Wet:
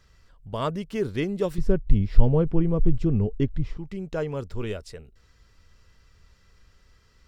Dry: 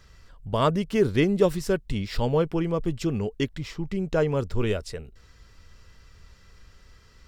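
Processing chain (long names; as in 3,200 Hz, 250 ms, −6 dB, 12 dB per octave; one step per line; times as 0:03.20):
0:01.58–0:03.77: spectral tilt −4 dB per octave
level −5.5 dB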